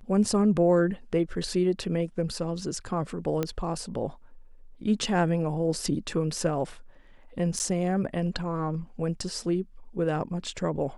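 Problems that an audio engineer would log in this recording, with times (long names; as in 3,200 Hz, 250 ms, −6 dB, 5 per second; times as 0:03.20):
0:03.43: click −14 dBFS
0:07.59–0:07.60: drop-out 9.7 ms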